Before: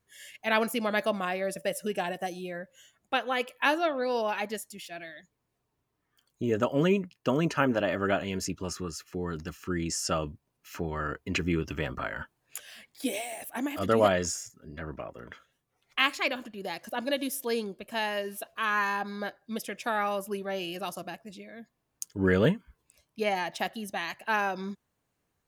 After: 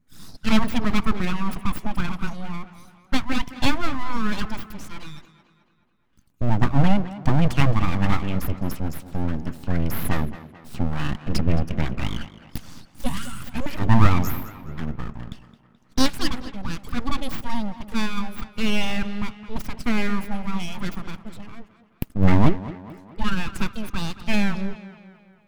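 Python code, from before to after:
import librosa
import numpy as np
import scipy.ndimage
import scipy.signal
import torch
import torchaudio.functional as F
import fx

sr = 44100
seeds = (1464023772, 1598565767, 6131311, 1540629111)

p1 = fx.envelope_sharpen(x, sr, power=1.5)
p2 = np.abs(p1)
p3 = fx.low_shelf_res(p2, sr, hz=320.0, db=8.5, q=1.5)
p4 = p3 + fx.echo_tape(p3, sr, ms=215, feedback_pct=56, wet_db=-13.5, lp_hz=4400.0, drive_db=2.0, wow_cents=38, dry=0)
y = p4 * 10.0 ** (4.5 / 20.0)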